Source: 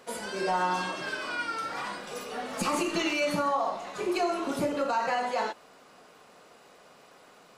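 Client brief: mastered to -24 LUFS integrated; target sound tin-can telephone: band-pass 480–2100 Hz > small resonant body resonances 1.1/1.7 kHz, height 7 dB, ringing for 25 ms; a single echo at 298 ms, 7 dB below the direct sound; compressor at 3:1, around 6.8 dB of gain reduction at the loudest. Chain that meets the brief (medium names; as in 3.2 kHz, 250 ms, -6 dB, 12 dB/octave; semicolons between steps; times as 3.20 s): compression 3:1, threshold -33 dBFS; band-pass 480–2100 Hz; delay 298 ms -7 dB; small resonant body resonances 1.1/1.7 kHz, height 7 dB, ringing for 25 ms; trim +11.5 dB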